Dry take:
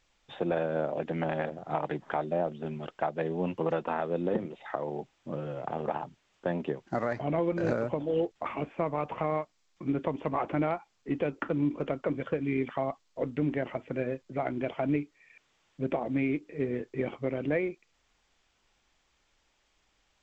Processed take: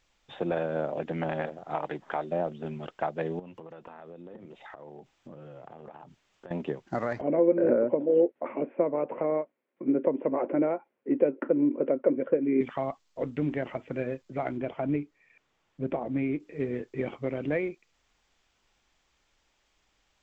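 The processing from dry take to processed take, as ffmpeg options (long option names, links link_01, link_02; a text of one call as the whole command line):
ffmpeg -i in.wav -filter_complex "[0:a]asettb=1/sr,asplit=3[link_01][link_02][link_03];[link_01]atrim=end=1.464[link_04];[link_02]atrim=start=1.46:end=2.32,asetpts=PTS-STARTPTS,afade=type=in:duration=0.004:curve=qsin,afade=type=out:start_time=0.856:duration=0.004:curve=qsin,equalizer=frequency=110:width=0.49:gain=-6[link_05];[link_03]atrim=start=2.316[link_06];[link_04][link_05]acrossfade=duration=0.004:curve1=hsin:curve2=qsin[link_07];[link_07][link_06]acrossfade=duration=0.004:curve1=qsin:curve2=hsin,asettb=1/sr,asplit=3[link_08][link_09][link_10];[link_08]atrim=end=3.394[link_11];[link_09]atrim=start=3.39:end=6.51,asetpts=PTS-STARTPTS,afade=type=in:duration=0.004:curve=qsin,afade=type=out:start_time=3.116:duration=0.004:curve=qsin,acompressor=threshold=-42dB:ratio=8:attack=3.2:release=140:knee=1:detection=peak[link_12];[link_10]atrim=start=6.506[link_13];[link_11][link_12]acrossfade=duration=0.004:curve1=hsin:curve2=qsin[link_14];[link_14][link_13]acrossfade=duration=0.004:curve1=qsin:curve2=hsin,asettb=1/sr,asplit=3[link_15][link_16][link_17];[link_15]atrim=end=7.214[link_18];[link_16]atrim=start=7.21:end=12.61,asetpts=PTS-STARTPTS,afade=type=in:duration=0.004:curve=qsin,afade=type=out:start_time=5.396:duration=0.004:curve=qsin,highpass=240,equalizer=frequency=250:width_type=q:width=4:gain=9,equalizer=frequency=370:width_type=q:width=4:gain=7,equalizer=frequency=540:width_type=q:width=4:gain=10,equalizer=frequency=780:width_type=q:width=4:gain=-5,equalizer=frequency=1200:width_type=q:width=4:gain=-8,equalizer=frequency=1700:width_type=q:width=4:gain=-4,lowpass=frequency=2000:width=0.5412,lowpass=frequency=2000:width=1.3066[link_19];[link_17]atrim=start=12.606[link_20];[link_18][link_19]acrossfade=duration=0.004:curve1=hsin:curve2=qsin[link_21];[link_21][link_20]acrossfade=duration=0.004:curve1=qsin:curve2=hsin,asettb=1/sr,asplit=3[link_22][link_23][link_24];[link_22]atrim=end=14.574[link_25];[link_23]atrim=start=14.57:end=16.4,asetpts=PTS-STARTPTS,afade=type=in:duration=0.004:curve=qsin,afade=type=out:start_time=1.826:duration=0.004:curve=qsin,highshelf=frequency=2100:gain=-8.5[link_26];[link_24]atrim=start=16.396[link_27];[link_25][link_26]acrossfade=duration=0.004:curve1=hsin:curve2=qsin[link_28];[link_28][link_27]acrossfade=duration=0.004:curve1=qsin:curve2=hsin" out.wav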